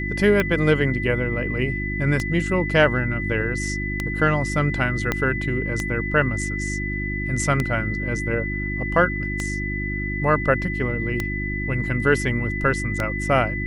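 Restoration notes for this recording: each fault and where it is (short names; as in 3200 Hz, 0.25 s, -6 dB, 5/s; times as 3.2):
hum 50 Hz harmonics 7 -28 dBFS
tick 33 1/3 rpm -9 dBFS
tone 2000 Hz -28 dBFS
5.12 pop -7 dBFS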